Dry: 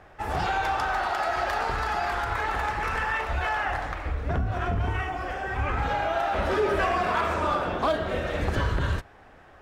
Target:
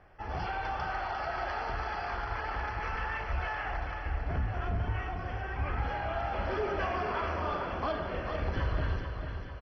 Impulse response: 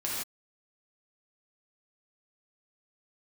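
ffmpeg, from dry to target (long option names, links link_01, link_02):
-filter_complex "[0:a]lowpass=6100,lowshelf=frequency=98:gain=6.5,asplit=2[link_01][link_02];[link_02]aecho=0:1:444|888|1332|1776|2220|2664:0.447|0.237|0.125|0.0665|0.0352|0.0187[link_03];[link_01][link_03]amix=inputs=2:normalize=0,volume=-9dB" -ar 32000 -c:a mp2 -b:a 32k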